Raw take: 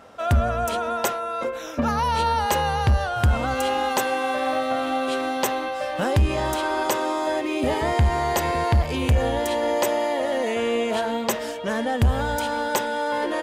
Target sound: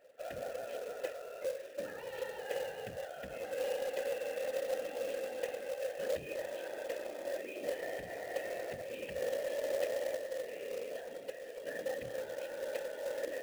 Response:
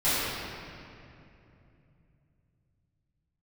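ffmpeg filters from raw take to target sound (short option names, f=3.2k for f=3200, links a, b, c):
-filter_complex "[0:a]asettb=1/sr,asplit=3[a][b][c];[a]atrim=end=10.154[d];[b]atrim=start=10.15:end=11.56,asetpts=PTS-STARTPTS,afade=t=in:d=0.004:c=qsin,afade=t=out:st=1.406:d=0.004:c=qsin,acrossover=split=150[e][f];[f]acompressor=threshold=-29dB:ratio=2[g];[e][g]amix=inputs=2:normalize=0[h];[c]atrim=start=11.556[i];[d][h]acrossfade=d=0.004:c1=hsin:c2=qsin[j];[j][i]acrossfade=d=0.004:c1=qsin:c2=hsin,afftfilt=real='hypot(re,im)*cos(2*PI*random(0))':imag='hypot(re,im)*sin(2*PI*random(1))':win_size=512:overlap=0.75,asplit=3[k][l][m];[k]bandpass=f=530:t=q:w=8,volume=0dB[n];[l]bandpass=f=1.84k:t=q:w=8,volume=-6dB[o];[m]bandpass=f=2.48k:t=q:w=8,volume=-9dB[p];[n][o][p]amix=inputs=3:normalize=0,acrusher=bits=3:mode=log:mix=0:aa=0.000001"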